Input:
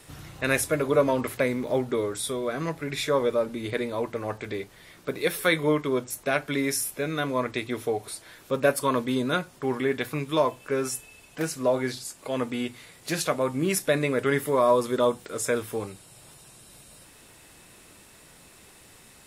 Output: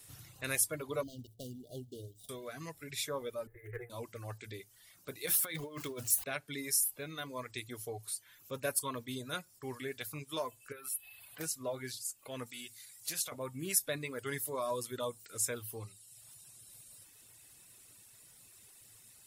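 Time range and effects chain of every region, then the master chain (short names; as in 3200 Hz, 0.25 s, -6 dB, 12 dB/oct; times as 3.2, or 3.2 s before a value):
1.03–2.29 median filter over 41 samples + dynamic EQ 570 Hz, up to -8 dB, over -40 dBFS, Q 1.2 + brick-wall FIR band-stop 780–2800 Hz
3.47–3.9 minimum comb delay 2.4 ms + EQ curve 110 Hz 0 dB, 220 Hz -23 dB, 420 Hz +5 dB, 930 Hz -14 dB, 1900 Hz +5 dB, 2900 Hz -21 dB, 4200 Hz -30 dB, 7300 Hz -21 dB, 15000 Hz -6 dB
5.26–6.24 zero-crossing step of -34.5 dBFS + negative-ratio compressor -26 dBFS
10.72–11.4 EQ curve 260 Hz 0 dB, 1300 Hz +10 dB, 4300 Hz +6 dB, 6100 Hz -9 dB, 11000 Hz +10 dB + compressor 2:1, threshold -41 dBFS
12.46–13.32 tilt shelf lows -4.5 dB, about 1400 Hz + compressor 2.5:1, threshold -29 dBFS
whole clip: pre-emphasis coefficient 0.8; reverb removal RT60 0.95 s; bell 110 Hz +13 dB 0.42 oct; gain -1.5 dB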